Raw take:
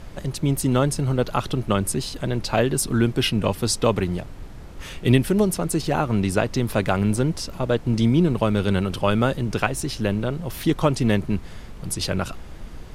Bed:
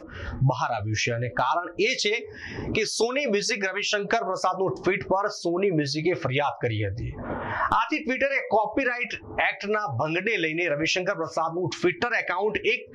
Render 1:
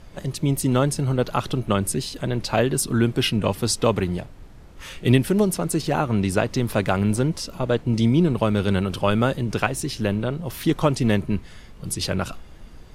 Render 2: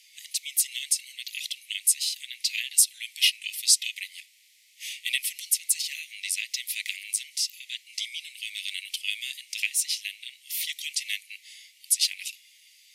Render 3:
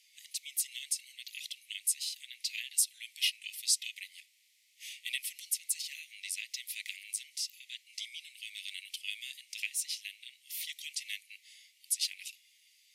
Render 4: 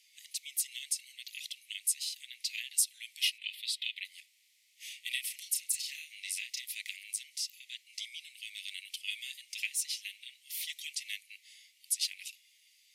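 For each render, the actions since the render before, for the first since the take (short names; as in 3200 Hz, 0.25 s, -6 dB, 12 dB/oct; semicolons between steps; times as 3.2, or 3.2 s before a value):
noise print and reduce 6 dB
steep high-pass 2000 Hz 96 dB/oct; tilt +2 dB/oct
gain -9 dB
3.38–4.05 resonant high shelf 4700 Hz -9 dB, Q 3; 5.08–6.66 doubler 32 ms -5 dB; 9.07–10.91 comb 5.6 ms, depth 54%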